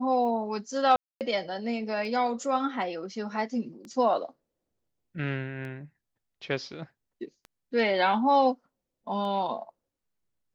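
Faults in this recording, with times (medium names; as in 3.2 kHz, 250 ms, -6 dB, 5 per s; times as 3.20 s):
tick 33 1/3 rpm -29 dBFS
0.96–1.21 s: dropout 248 ms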